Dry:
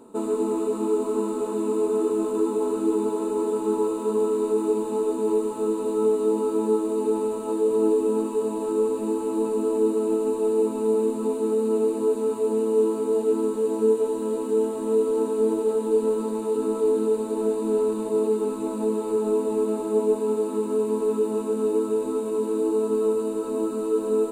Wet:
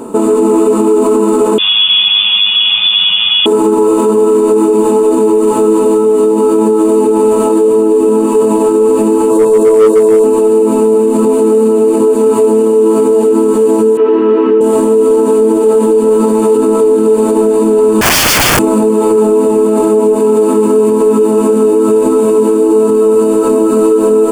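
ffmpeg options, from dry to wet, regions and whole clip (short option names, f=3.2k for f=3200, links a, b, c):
-filter_complex "[0:a]asettb=1/sr,asplit=3[a][b][c];[a]atrim=end=1.584[d];[b]atrim=start=1.58:end=3.46,asetpts=PTS-STARTPTS,afade=t=in:d=0.004:c=qsin,afade=t=out:st=1.876:d=0.004:c=qsin,highpass=f=350:p=1,aemphasis=mode=production:type=riaa,lowpass=f=3.2k:t=q:w=0.5098,lowpass=f=3.2k:t=q:w=0.6013,lowpass=f=3.2k:t=q:w=0.9,lowpass=f=3.2k:t=q:w=2.563,afreqshift=-3800[e];[c]atrim=start=3.456[f];[d][e]acrossfade=d=0.004:c1=hsin:c2=qsin[g];[g][f]acrossfade=d=0.004:c1=qsin:c2=hsin,asettb=1/sr,asplit=3[h][i][j];[h]atrim=end=9.304[k];[i]atrim=start=9.3:end=10.24,asetpts=PTS-STARTPTS,afade=t=in:d=0.004:c=qsin,afade=t=out:st=0.936:d=0.004:c=qsin,equalizer=f=2.1k:t=o:w=0.84:g=-13.5,aecho=1:1:1.9:0.71,atrim=end_sample=41454,asoftclip=type=hard:threshold=-17.5dB[l];[j]atrim=start=10.236[m];[k][l]acrossfade=d=0.004:c1=hsin:c2=qsin[n];[n][m]acrossfade=d=0.004:c1=qsin:c2=hsin,asettb=1/sr,asplit=3[o][p][q];[o]atrim=end=13.974[r];[p]atrim=start=13.97:end=14.61,asetpts=PTS-STARTPTS,afade=t=in:d=0.004:c=qsin,afade=t=out:st=0.636:d=0.004:c=qsin,highpass=270,equalizer=f=380:t=q:w=4:g=9,equalizer=f=570:t=q:w=4:g=-7,equalizer=f=820:t=q:w=4:g=-5,equalizer=f=1.3k:t=q:w=4:g=4,equalizer=f=1.9k:t=q:w=4:g=6,equalizer=f=2.8k:t=q:w=4:g=3,lowpass=f=3.1k:w=0.5412,lowpass=f=3.1k:w=1.3066,bandreject=f=480:w=5.7[s];[q]atrim=start=14.606[t];[r][s]acrossfade=d=0.004:c1=hsin:c2=qsin[u];[u][t]acrossfade=d=0.004:c1=qsin:c2=hsin,asettb=1/sr,asplit=3[v][w][x];[v]atrim=end=18.014[y];[w]atrim=start=18.01:end=18.59,asetpts=PTS-STARTPTS,afade=t=in:d=0.004:c=qsin,afade=t=out:st=0.576:d=0.004:c=qsin,equalizer=f=250:w=1.9:g=4.5,aecho=1:1:4.4:0.36,atrim=end_sample=25578,aeval=exprs='(mod(21.1*val(0)+1,2)-1)/21.1':c=same[z];[x]atrim=start=18.586[aa];[y][z]acrossfade=d=0.004:c1=hsin:c2=qsin[ab];[ab][aa]acrossfade=d=0.004:c1=qsin:c2=hsin,bandreject=f=3.9k:w=5.8,acompressor=threshold=-23dB:ratio=6,alimiter=level_in=24.5dB:limit=-1dB:release=50:level=0:latency=1,volume=-1dB"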